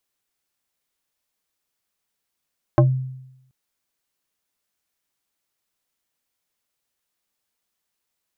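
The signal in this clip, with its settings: FM tone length 0.73 s, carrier 130 Hz, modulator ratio 3.6, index 1.8, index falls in 0.17 s exponential, decay 0.86 s, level -8.5 dB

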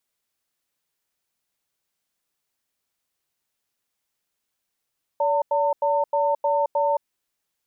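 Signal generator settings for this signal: cadence 574 Hz, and 905 Hz, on 0.22 s, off 0.09 s, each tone -21 dBFS 1.78 s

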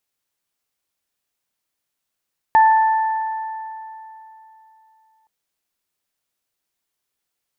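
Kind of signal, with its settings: additive tone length 2.72 s, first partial 882 Hz, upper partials -12 dB, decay 3.19 s, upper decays 2.73 s, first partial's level -8 dB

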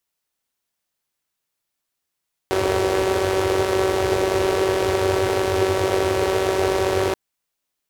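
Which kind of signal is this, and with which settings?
four-cylinder engine model, steady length 4.63 s, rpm 5700, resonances 94/400 Hz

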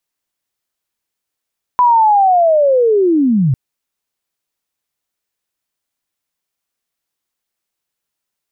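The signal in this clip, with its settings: sweep linear 1 kHz -> 120 Hz -6.5 dBFS -> -9.5 dBFS 1.75 s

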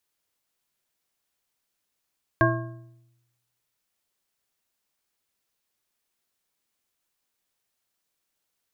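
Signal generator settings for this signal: metal hit bar, lowest mode 121 Hz, modes 5, decay 1.00 s, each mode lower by 0 dB, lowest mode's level -20 dB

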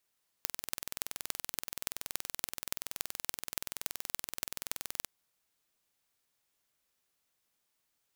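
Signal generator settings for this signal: pulse train 21.1 per s, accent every 6, -4 dBFS 4.62 s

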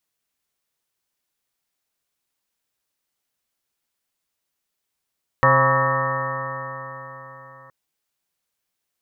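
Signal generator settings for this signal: stretched partials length 2.27 s, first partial 131 Hz, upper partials -10.5/-17/2/-10/-7/-0.5/4/0/-17/-13.5/1 dB, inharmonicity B 0.0024, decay 4.15 s, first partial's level -20 dB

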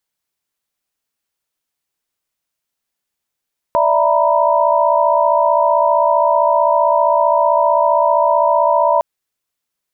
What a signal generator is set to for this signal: chord D5/E5/A#5/B5 sine, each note -16 dBFS 5.26 s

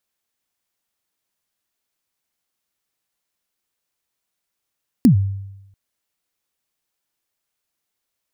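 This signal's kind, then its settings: kick drum length 0.69 s, from 280 Hz, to 98 Hz, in 105 ms, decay 0.93 s, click on, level -5.5 dB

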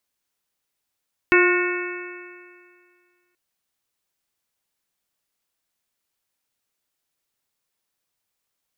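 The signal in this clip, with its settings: stretched partials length 2.03 s, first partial 354 Hz, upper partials -18/-9/-5/-5.5/-5/-6 dB, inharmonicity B 0.0024, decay 2.05 s, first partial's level -14 dB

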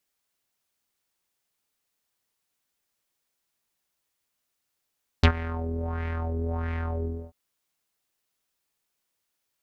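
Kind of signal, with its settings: synth patch with filter wobble E2, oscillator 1 square, filter lowpass, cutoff 390 Hz, filter envelope 3.5 oct, filter decay 0.05 s, filter sustain 35%, attack 7.3 ms, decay 0.08 s, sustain -19 dB, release 0.27 s, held 1.82 s, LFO 1.5 Hz, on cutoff 1.2 oct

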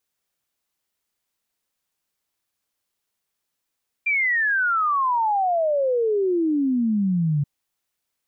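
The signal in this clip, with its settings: log sweep 2.4 kHz -> 140 Hz 3.38 s -18 dBFS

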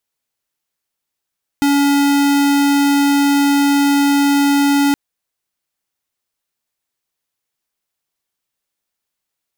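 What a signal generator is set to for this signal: tone square 283 Hz -13 dBFS 3.32 s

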